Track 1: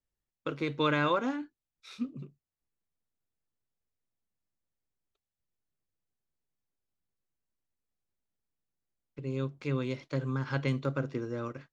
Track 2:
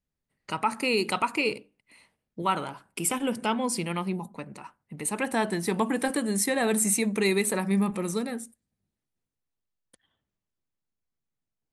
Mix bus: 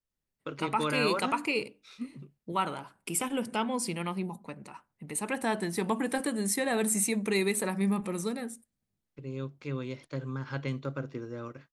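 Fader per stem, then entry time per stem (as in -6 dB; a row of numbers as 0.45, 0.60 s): -3.5, -3.5 dB; 0.00, 0.10 s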